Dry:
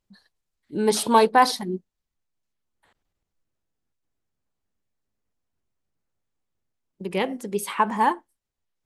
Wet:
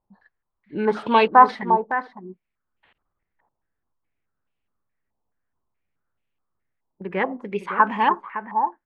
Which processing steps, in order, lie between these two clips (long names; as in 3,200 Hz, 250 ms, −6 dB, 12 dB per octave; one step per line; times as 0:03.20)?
slap from a distant wall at 96 metres, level −10 dB
low-pass on a step sequencer 4.7 Hz 890–2,700 Hz
level −1 dB